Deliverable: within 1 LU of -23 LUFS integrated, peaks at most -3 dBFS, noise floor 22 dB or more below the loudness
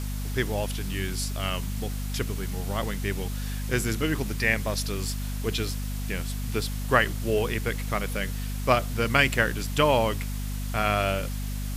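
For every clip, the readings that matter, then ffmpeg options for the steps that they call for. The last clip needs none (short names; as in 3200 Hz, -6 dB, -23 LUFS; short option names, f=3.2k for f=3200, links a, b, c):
hum 50 Hz; harmonics up to 250 Hz; hum level -29 dBFS; noise floor -31 dBFS; noise floor target -50 dBFS; loudness -27.5 LUFS; peak -5.0 dBFS; loudness target -23.0 LUFS
-> -af "bandreject=f=50:t=h:w=6,bandreject=f=100:t=h:w=6,bandreject=f=150:t=h:w=6,bandreject=f=200:t=h:w=6,bandreject=f=250:t=h:w=6"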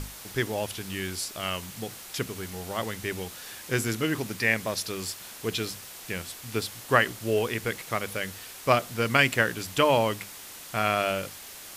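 hum none; noise floor -44 dBFS; noise floor target -50 dBFS
-> -af "afftdn=nr=6:nf=-44"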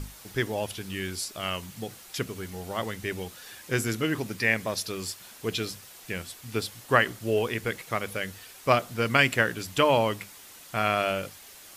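noise floor -49 dBFS; noise floor target -51 dBFS
-> -af "afftdn=nr=6:nf=-49"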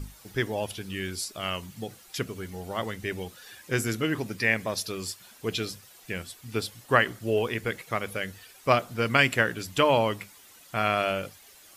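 noise floor -53 dBFS; loudness -28.5 LUFS; peak -5.5 dBFS; loudness target -23.0 LUFS
-> -af "volume=5.5dB,alimiter=limit=-3dB:level=0:latency=1"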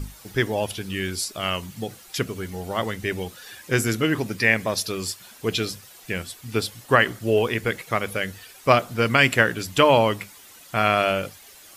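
loudness -23.0 LUFS; peak -3.0 dBFS; noise floor -48 dBFS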